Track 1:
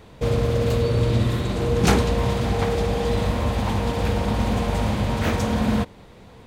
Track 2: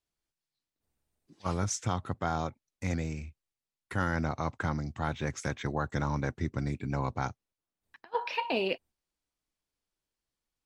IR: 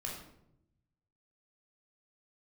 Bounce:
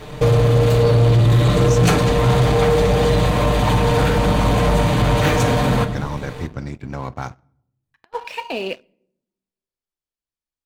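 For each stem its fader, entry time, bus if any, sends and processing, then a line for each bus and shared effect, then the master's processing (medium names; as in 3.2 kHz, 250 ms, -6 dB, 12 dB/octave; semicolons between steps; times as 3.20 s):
+1.0 dB, 0.00 s, send -6.5 dB, band-stop 5.2 kHz, Q 9.8; compression 4:1, threshold -24 dBFS, peak gain reduction 10.5 dB; comb 6.7 ms, depth 94%
-4.5 dB, 0.00 s, send -12.5 dB, none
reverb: on, RT60 0.80 s, pre-delay 16 ms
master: waveshaping leveller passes 2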